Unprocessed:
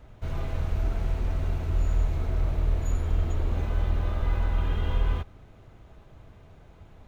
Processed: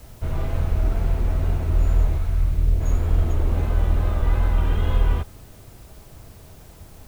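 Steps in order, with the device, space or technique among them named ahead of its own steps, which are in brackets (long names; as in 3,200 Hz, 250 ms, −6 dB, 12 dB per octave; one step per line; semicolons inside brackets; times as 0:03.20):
0:02.16–0:02.80: parametric band 280 Hz → 1,200 Hz −11 dB 2.4 octaves
plain cassette with noise reduction switched in (one half of a high-frequency compander decoder only; tape wow and flutter; white noise bed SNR 34 dB)
level +6 dB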